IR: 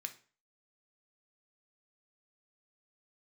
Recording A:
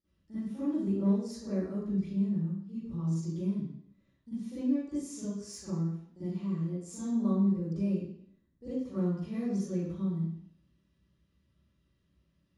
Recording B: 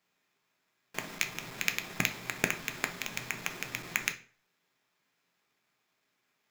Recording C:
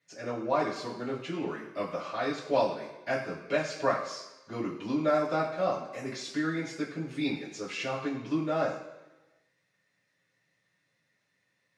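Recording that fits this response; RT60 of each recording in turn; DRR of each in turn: B; 0.65, 0.40, 1.1 seconds; −17.0, 6.5, −10.0 decibels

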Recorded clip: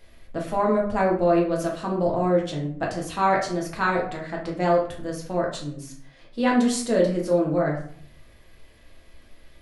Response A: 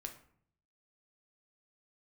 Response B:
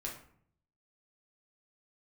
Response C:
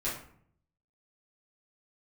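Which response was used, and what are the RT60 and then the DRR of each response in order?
B; 0.60, 0.60, 0.60 seconds; 4.0, −2.5, −9.5 decibels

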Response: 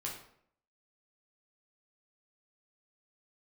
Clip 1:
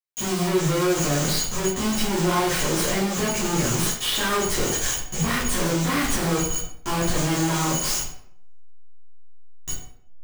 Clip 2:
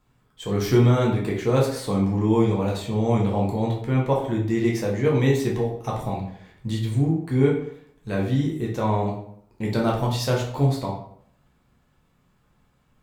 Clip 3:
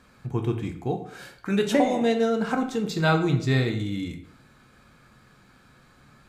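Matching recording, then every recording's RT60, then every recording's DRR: 2; 0.65, 0.65, 0.65 seconds; −9.0, −3.0, 4.0 decibels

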